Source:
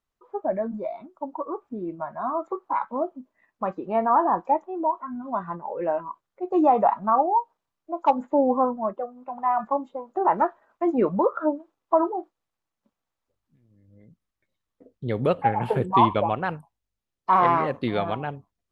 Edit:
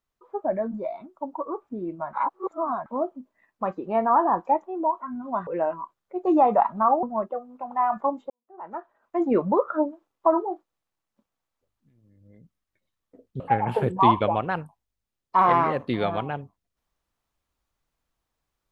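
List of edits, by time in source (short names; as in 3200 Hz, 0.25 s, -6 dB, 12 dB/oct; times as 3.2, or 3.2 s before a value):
2.13–2.86 reverse
5.47–5.74 cut
7.3–8.7 cut
9.97–10.93 fade in quadratic
15.07–15.34 cut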